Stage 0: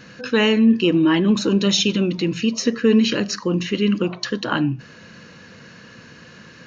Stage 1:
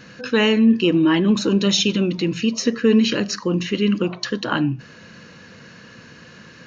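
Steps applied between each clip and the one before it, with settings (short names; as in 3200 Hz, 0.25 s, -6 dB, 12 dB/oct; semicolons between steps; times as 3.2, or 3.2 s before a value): nothing audible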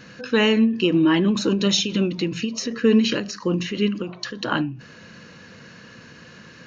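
ending taper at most 110 dB/s; gain -1 dB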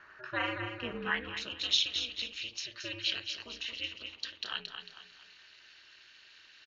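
feedback echo 0.224 s, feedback 40%, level -7.5 dB; band-pass sweep 1300 Hz -> 3400 Hz, 0.95–1.59; ring modulator 120 Hz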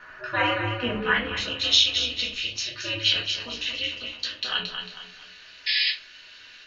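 painted sound noise, 5.66–5.91, 1700–5200 Hz -33 dBFS; shoebox room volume 140 m³, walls furnished, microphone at 1.9 m; gain +6.5 dB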